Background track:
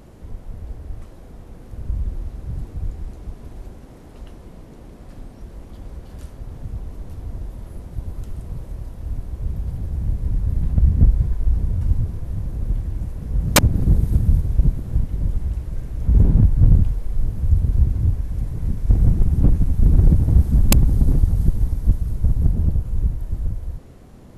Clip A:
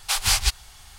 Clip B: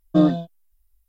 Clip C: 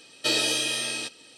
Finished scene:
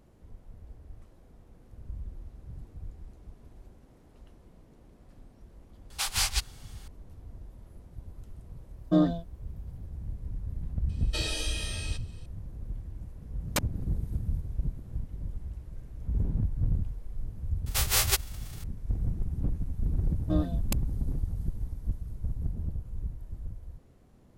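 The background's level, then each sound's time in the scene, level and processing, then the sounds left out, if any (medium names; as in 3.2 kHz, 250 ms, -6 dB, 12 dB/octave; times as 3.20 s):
background track -15 dB
5.90 s: add A -7 dB
8.77 s: add B -6.5 dB + band-stop 2.6 kHz, Q 8
10.89 s: add C -9.5 dB
17.66 s: add A -5 dB + formants flattened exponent 0.3
20.15 s: add B -13.5 dB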